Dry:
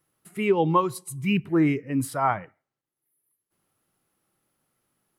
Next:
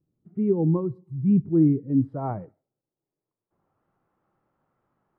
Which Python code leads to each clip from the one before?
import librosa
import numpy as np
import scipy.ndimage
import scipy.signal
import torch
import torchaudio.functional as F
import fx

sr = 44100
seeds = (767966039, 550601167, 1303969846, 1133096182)

y = fx.peak_eq(x, sr, hz=280.0, db=-2.5, octaves=2.1)
y = fx.filter_sweep_lowpass(y, sr, from_hz=270.0, to_hz=1100.0, start_s=1.76, end_s=3.88, q=1.2)
y = y * 10.0 ** (4.5 / 20.0)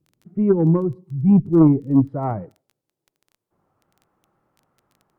y = fx.wow_flutter(x, sr, seeds[0], rate_hz=2.1, depth_cents=22.0)
y = fx.dmg_crackle(y, sr, seeds[1], per_s=10.0, level_db=-45.0)
y = fx.cheby_harmonics(y, sr, harmonics=(2, 4), levels_db=(-11, -18), full_scale_db=-10.0)
y = y * 10.0 ** (5.5 / 20.0)